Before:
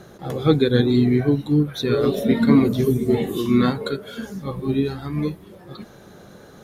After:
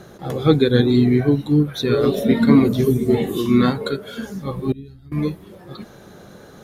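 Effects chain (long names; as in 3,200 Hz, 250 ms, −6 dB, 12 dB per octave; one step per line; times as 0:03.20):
0:04.72–0:05.12: guitar amp tone stack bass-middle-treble 10-0-1
level +2 dB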